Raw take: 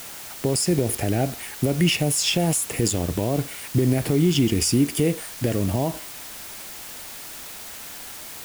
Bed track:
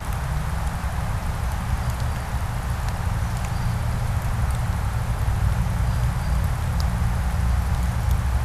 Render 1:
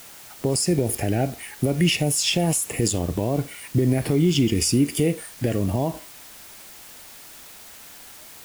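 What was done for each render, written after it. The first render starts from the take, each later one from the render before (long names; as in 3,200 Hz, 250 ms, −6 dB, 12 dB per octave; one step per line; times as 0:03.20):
noise reduction from a noise print 6 dB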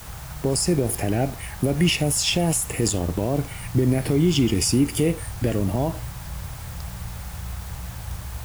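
mix in bed track −11.5 dB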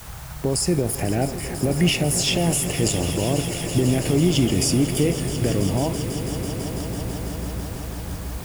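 echo that builds up and dies away 165 ms, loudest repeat 5, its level −14.5 dB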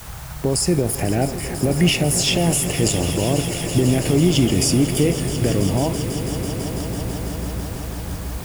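level +2.5 dB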